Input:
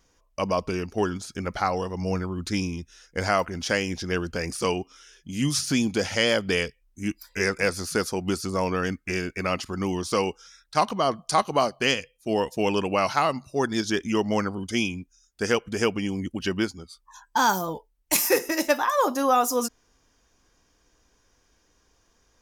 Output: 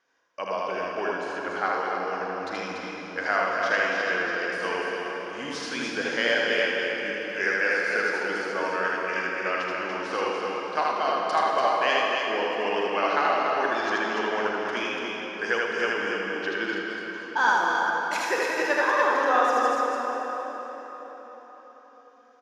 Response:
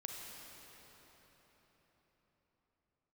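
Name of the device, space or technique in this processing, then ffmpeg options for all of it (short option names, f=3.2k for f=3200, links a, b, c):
station announcement: -filter_complex "[0:a]highpass=450,lowpass=3.6k,equalizer=f=1.6k:t=o:w=0.31:g=9.5,aecho=1:1:78.72|288.6:0.794|0.562[a];[1:a]atrim=start_sample=2205[b];[a][b]afir=irnorm=-1:irlink=0"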